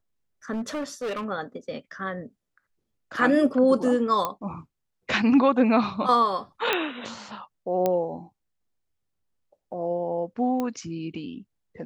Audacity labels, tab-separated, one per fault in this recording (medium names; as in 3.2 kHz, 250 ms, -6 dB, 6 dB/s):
0.520000	1.250000	clipped -26.5 dBFS
4.250000	4.250000	pop -12 dBFS
6.730000	6.730000	pop -9 dBFS
7.860000	7.860000	pop -11 dBFS
10.600000	10.600000	pop -16 dBFS